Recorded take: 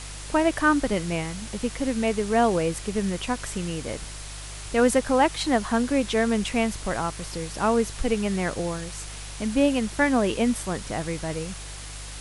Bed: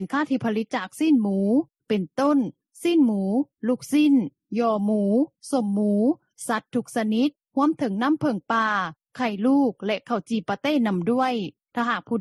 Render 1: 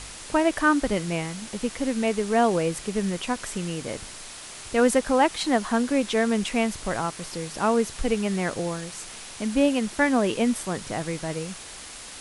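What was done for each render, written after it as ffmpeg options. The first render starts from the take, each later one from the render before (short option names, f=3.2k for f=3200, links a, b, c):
-af "bandreject=f=50:t=h:w=4,bandreject=f=100:t=h:w=4,bandreject=f=150:t=h:w=4"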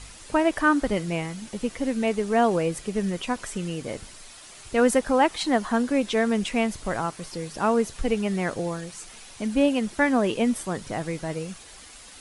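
-af "afftdn=nr=8:nf=-41"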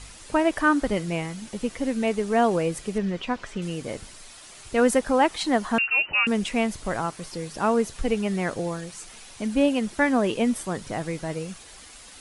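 -filter_complex "[0:a]asettb=1/sr,asplit=3[a][b][c];[a]atrim=end=2.984[d];[b]atrim=start=2.98:end=3.62,asetpts=PTS-STARTPTS,afade=t=in:d=0.004:c=qsin,afade=t=out:st=0.636:d=0.004:c=qsin,lowpass=4.2k[e];[c]atrim=start=3.616[f];[d][e]acrossfade=d=0.004:c1=hsin:c2=qsin[g];[g][f]acrossfade=d=0.004:c1=qsin:c2=hsin,asettb=1/sr,asplit=3[h][i][j];[h]atrim=end=5.784[k];[i]atrim=start=5.78:end=6.27,asetpts=PTS-STARTPTS,afade=t=in:d=0.004:c=qsin,afade=t=out:st=0.486:d=0.004:c=qsin,lowpass=f=2.6k:t=q:w=0.5098,lowpass=f=2.6k:t=q:w=0.6013,lowpass=f=2.6k:t=q:w=0.9,lowpass=f=2.6k:t=q:w=2.563,afreqshift=-3000[l];[j]atrim=start=6.266[m];[k][l]acrossfade=d=0.004:c1=hsin:c2=qsin[n];[n][m]acrossfade=d=0.004:c1=qsin:c2=hsin"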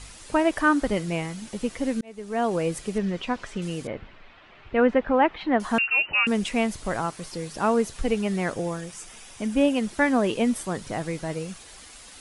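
-filter_complex "[0:a]asettb=1/sr,asplit=3[a][b][c];[a]atrim=end=3.874[d];[b]atrim=start=3.87:end=5.6,asetpts=PTS-STARTPTS,afade=t=in:d=0.004:c=qsin,afade=t=out:st=1.726:d=0.004:c=qsin,lowpass=f=2.8k:w=0.5412,lowpass=f=2.8k:w=1.3066[e];[c]atrim=start=5.596[f];[d][e]acrossfade=d=0.004:c1=hsin:c2=qsin[g];[g][f]acrossfade=d=0.004:c1=qsin:c2=hsin,asettb=1/sr,asplit=3[h][i][j];[h]atrim=end=8.524[k];[i]atrim=start=8.52:end=9.77,asetpts=PTS-STARTPTS,afade=t=in:d=0.004:c=qsin,afade=t=out:st=1.246:d=0.004:c=qsin,bandreject=f=4.2k:w=7[l];[j]atrim=start=9.766[m];[k][l]acrossfade=d=0.004:c1=hsin:c2=qsin[n];[n][m]acrossfade=d=0.004:c1=qsin:c2=hsin,asplit=2[o][p];[o]atrim=end=2.01,asetpts=PTS-STARTPTS,afade=t=out:st=2.006:d=0.004:c=hsin[q];[p]atrim=start=2.01,asetpts=PTS-STARTPTS,afade=t=in:d=0.69[r];[q][r]concat=n=2:v=0:a=1"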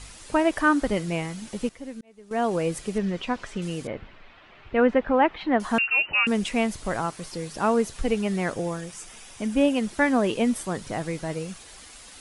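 -filter_complex "[0:a]asplit=3[a][b][c];[a]atrim=end=1.692[d];[b]atrim=start=1.688:end=2.312,asetpts=PTS-STARTPTS,volume=-11dB[e];[c]atrim=start=2.308[f];[d][e]acrossfade=d=0.004:c1=hsin:c2=hsin[g];[g][f]acrossfade=d=0.004:c1=hsin:c2=hsin"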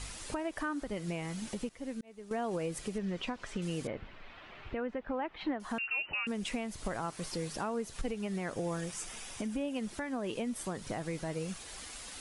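-af "acompressor=threshold=-27dB:ratio=6,alimiter=level_in=2dB:limit=-24dB:level=0:latency=1:release=491,volume=-2dB"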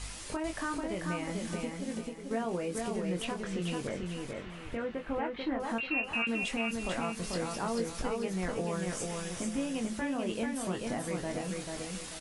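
-filter_complex "[0:a]asplit=2[a][b];[b]adelay=22,volume=-5.5dB[c];[a][c]amix=inputs=2:normalize=0,aecho=1:1:440|880|1320|1760|2200:0.668|0.234|0.0819|0.0287|0.01"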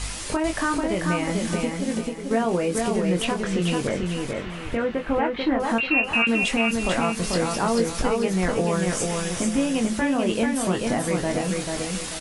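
-af "volume=11dB"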